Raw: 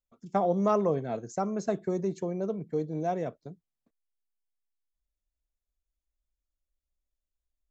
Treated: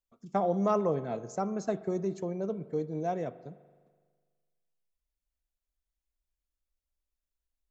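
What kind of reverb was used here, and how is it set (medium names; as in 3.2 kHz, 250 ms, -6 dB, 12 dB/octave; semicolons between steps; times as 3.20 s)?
spring tank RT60 1.6 s, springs 41 ms, chirp 45 ms, DRR 15 dB; trim -2 dB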